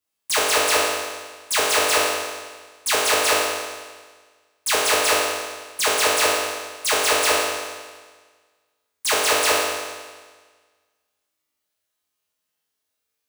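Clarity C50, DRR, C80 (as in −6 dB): −1.0 dB, −8.0 dB, 1.5 dB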